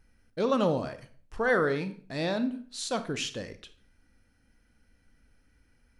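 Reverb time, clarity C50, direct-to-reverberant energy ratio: 0.50 s, 13.0 dB, 10.5 dB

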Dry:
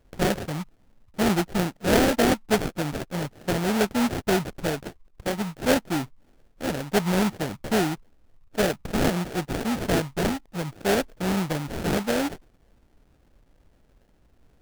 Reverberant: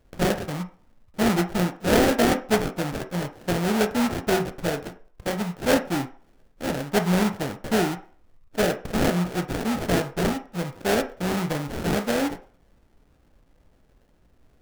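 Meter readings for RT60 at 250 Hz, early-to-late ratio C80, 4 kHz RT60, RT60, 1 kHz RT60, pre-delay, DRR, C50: 0.40 s, 18.5 dB, 0.45 s, 0.45 s, 0.45 s, 14 ms, 6.5 dB, 13.5 dB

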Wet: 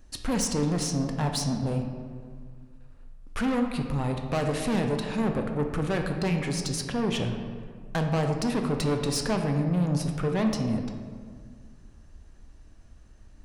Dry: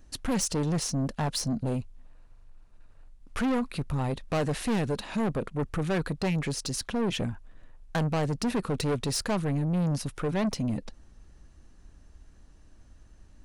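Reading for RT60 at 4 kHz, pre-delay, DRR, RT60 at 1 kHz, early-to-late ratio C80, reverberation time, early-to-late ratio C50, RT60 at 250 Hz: 1.0 s, 10 ms, 3.5 dB, 1.8 s, 7.0 dB, 1.9 s, 5.5 dB, 2.2 s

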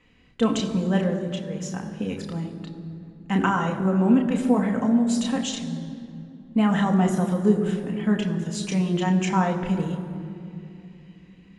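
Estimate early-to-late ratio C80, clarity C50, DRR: 9.5 dB, 8.5 dB, 1.5 dB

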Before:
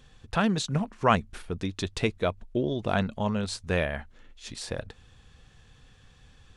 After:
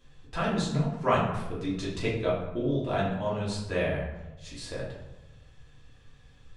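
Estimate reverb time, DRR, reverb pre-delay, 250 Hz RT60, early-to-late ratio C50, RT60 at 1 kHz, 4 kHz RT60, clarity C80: 1.0 s, −7.5 dB, 3 ms, 1.2 s, 3.0 dB, 0.95 s, 0.60 s, 6.0 dB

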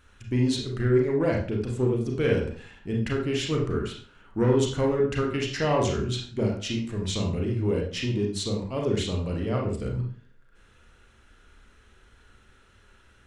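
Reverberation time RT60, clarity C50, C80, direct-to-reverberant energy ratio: 0.45 s, 4.5 dB, 9.5 dB, −1.0 dB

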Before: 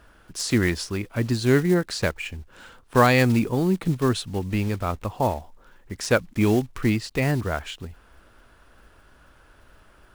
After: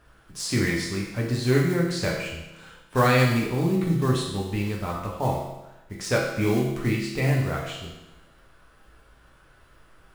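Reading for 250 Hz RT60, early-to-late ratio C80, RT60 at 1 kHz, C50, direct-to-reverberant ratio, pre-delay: 1.0 s, 5.5 dB, 1.0 s, 2.5 dB, −3.0 dB, 6 ms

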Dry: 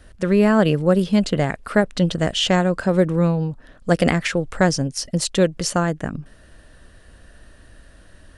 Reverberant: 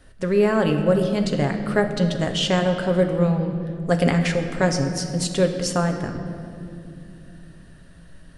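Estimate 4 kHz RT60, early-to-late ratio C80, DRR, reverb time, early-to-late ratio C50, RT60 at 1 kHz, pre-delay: 1.7 s, 8.0 dB, 4.0 dB, 2.6 s, 7.0 dB, 2.0 s, 7 ms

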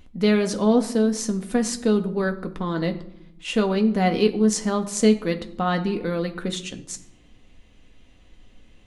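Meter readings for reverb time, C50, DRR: 0.75 s, 14.0 dB, 4.5 dB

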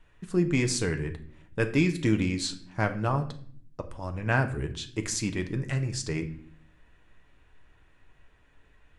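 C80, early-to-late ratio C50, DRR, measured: 17.0 dB, 13.0 dB, 6.0 dB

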